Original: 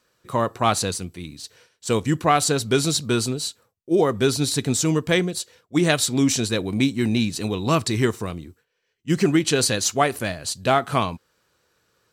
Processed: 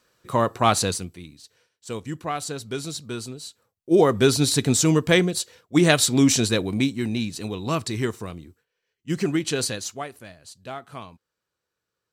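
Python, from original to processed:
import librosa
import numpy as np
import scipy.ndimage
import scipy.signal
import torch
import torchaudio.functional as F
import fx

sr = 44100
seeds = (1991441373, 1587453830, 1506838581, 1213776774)

y = fx.gain(x, sr, db=fx.line((0.92, 1.0), (1.43, -10.5), (3.45, -10.5), (3.94, 2.0), (6.49, 2.0), (7.08, -5.0), (9.64, -5.0), (10.15, -16.5)))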